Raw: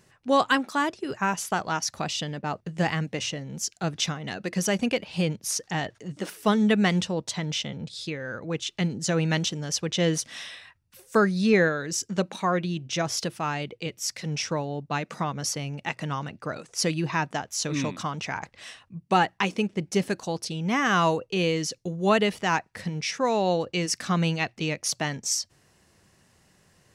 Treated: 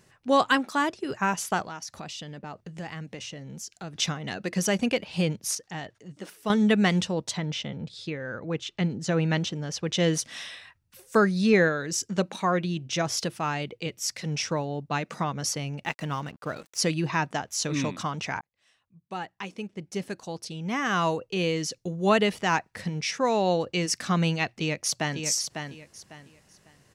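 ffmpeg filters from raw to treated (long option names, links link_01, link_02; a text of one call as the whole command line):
ffmpeg -i in.wav -filter_complex "[0:a]asettb=1/sr,asplit=3[link_01][link_02][link_03];[link_01]atrim=end=1.634[link_04];[link_02]atrim=start=1.63:end=3.95,asetpts=PTS-STARTPTS,afade=type=in:duration=0.004:curve=qsin,afade=type=out:start_time=2.316:duration=0.004:curve=qsin,acompressor=threshold=-39dB:ratio=2.5:attack=3.2:release=140:knee=1:detection=peak[link_05];[link_03]atrim=start=3.946[link_06];[link_04][link_05]acrossfade=duration=0.004:curve1=hsin:curve2=qsin[link_07];[link_07][link_06]acrossfade=duration=0.004:curve1=qsin:curve2=hsin,asettb=1/sr,asplit=3[link_08][link_09][link_10];[link_08]atrim=end=7.374[link_11];[link_09]atrim=start=7.37:end=9.87,asetpts=PTS-STARTPTS,afade=type=in:duration=0.004:curve=qsin,afade=type=out:start_time=2.496:duration=0.004:curve=qsin,lowpass=frequency=2800:poles=1[link_12];[link_10]atrim=start=9.866[link_13];[link_11][link_12]acrossfade=duration=0.004:curve1=hsin:curve2=qsin[link_14];[link_14][link_13]acrossfade=duration=0.004:curve1=qsin:curve2=hsin,asettb=1/sr,asplit=3[link_15][link_16][link_17];[link_15]atrim=end=15.844[link_18];[link_16]atrim=start=15.84:end=16.78,asetpts=PTS-STARTPTS,afade=type=in:duration=0.004:curve=qsin,afade=type=out:start_time=0.936:duration=0.004:curve=qsin,aeval=exprs='sgn(val(0))*max(abs(val(0))-0.00335,0)':channel_layout=same[link_19];[link_17]atrim=start=16.776[link_20];[link_18][link_19]acrossfade=duration=0.004:curve1=hsin:curve2=qsin[link_21];[link_21][link_20]acrossfade=duration=0.004:curve1=qsin:curve2=hsin,asplit=2[link_22][link_23];[link_23]afade=type=in:start_time=24.54:duration=0.01,afade=type=out:start_time=25.2:duration=0.01,aecho=0:1:550|1100|1650:0.473151|0.118288|0.029572[link_24];[link_22][link_24]amix=inputs=2:normalize=0,asplit=4[link_25][link_26][link_27][link_28];[link_25]atrim=end=5.552[link_29];[link_26]atrim=start=5.548:end=6.502,asetpts=PTS-STARTPTS,volume=-7.5dB[link_30];[link_27]atrim=start=6.498:end=18.41,asetpts=PTS-STARTPTS,afade=type=out:start_time=11.908:duration=0.004:curve=hsin[link_31];[link_28]atrim=start=18.41,asetpts=PTS-STARTPTS,afade=type=in:duration=3.76[link_32];[link_29][link_30]acrossfade=duration=0.004:curve1=hsin:curve2=hsin[link_33];[link_31][link_32]concat=n=2:v=0:a=1[link_34];[link_33][link_34]acrossfade=duration=0.004:curve1=hsin:curve2=hsin" out.wav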